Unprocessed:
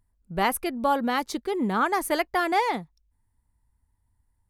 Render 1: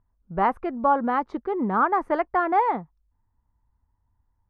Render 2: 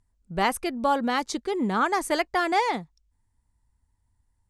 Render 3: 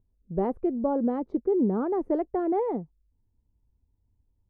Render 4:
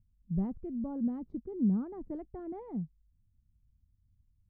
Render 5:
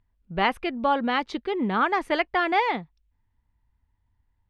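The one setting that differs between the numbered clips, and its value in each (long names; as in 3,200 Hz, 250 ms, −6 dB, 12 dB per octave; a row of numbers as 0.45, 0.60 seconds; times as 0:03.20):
low-pass with resonance, frequency: 1,200, 7,600, 440, 170, 3,000 Hertz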